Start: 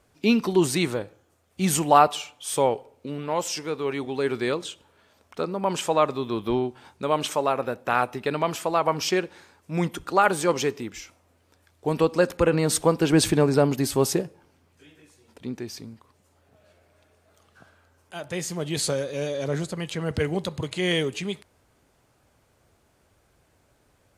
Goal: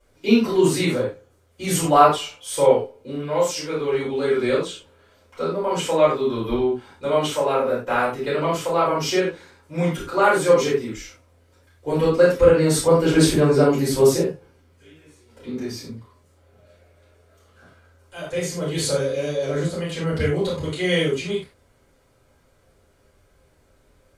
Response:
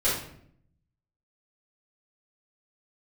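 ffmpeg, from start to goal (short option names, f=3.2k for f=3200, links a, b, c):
-filter_complex "[0:a]asettb=1/sr,asplit=3[a][b][c];[a]atrim=end=15.474[d];[b]atrim=start=15.47:end=15.89,asetpts=PTS-STARTPTS,afade=t=in:d=0.004:c=qsin,afade=t=out:st=0.416:d=0.004:c=qsin,asplit=2[e][f];[f]adelay=28,volume=-5.5dB[g];[e][g]amix=inputs=2:normalize=0,atrim=end_sample=18522[h];[c]atrim=start=15.886[i];[d][h]acrossfade=d=0.004:c1=hsin:c2=qsin[j];[j][i]acrossfade=d=0.004:c1=qsin:c2=hsin[k];[1:a]atrim=start_sample=2205,afade=t=out:st=0.16:d=0.01,atrim=end_sample=7497[l];[k][l]afir=irnorm=-1:irlink=0,volume=-8.5dB"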